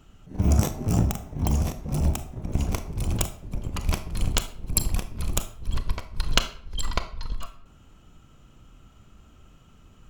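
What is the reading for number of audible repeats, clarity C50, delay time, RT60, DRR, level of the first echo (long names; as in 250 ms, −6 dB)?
no echo audible, 12.5 dB, no echo audible, 0.50 s, 9.5 dB, no echo audible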